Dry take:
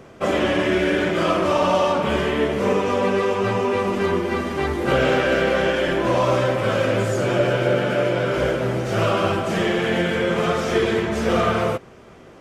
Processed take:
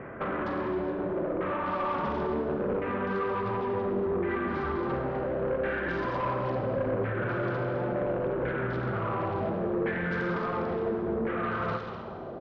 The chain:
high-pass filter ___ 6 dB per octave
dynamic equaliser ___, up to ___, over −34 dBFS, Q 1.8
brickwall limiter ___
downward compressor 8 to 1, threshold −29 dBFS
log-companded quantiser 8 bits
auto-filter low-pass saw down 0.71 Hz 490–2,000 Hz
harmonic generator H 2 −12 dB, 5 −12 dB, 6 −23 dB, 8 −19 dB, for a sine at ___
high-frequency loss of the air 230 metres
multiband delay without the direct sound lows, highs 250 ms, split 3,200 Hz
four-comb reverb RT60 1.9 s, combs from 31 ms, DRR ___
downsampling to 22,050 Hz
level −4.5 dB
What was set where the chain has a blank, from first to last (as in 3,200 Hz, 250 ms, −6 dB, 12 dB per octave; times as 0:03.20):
44 Hz, 650 Hz, −7 dB, −18.5 dBFS, −18 dBFS, 5 dB